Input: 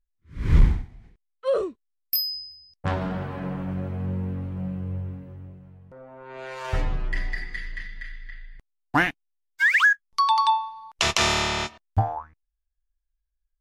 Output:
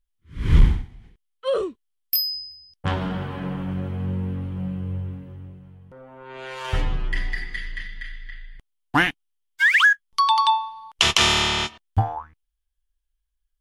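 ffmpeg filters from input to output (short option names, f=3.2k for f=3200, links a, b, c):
-af "equalizer=f=630:t=o:w=0.33:g=-6,equalizer=f=3.15k:t=o:w=0.33:g=8,equalizer=f=10k:t=o:w=0.33:g=5,volume=2dB"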